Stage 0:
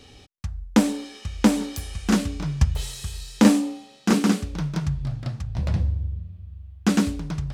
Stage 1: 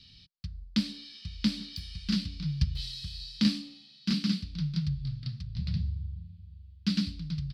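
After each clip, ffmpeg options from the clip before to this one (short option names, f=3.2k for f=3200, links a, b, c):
-af "firequalizer=gain_entry='entry(100,0);entry(170,7);entry(260,-8);entry(410,-20);entry(790,-23);entry(1200,-11);entry(2000,-3);entry(4600,14);entry(6600,-12)':delay=0.05:min_phase=1,volume=-9dB"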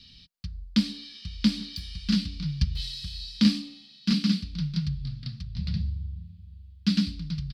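-af "aecho=1:1:4.2:0.35,volume=3dB"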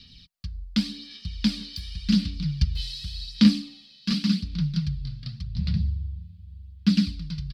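-af "aphaser=in_gain=1:out_gain=1:delay=2:decay=0.38:speed=0.88:type=sinusoidal"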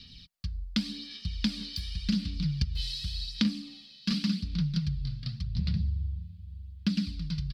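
-af "acompressor=threshold=-25dB:ratio=5"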